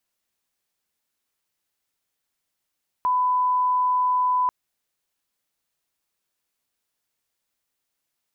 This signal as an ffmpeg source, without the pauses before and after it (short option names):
-f lavfi -i "sine=f=1000:d=1.44:r=44100,volume=0.06dB"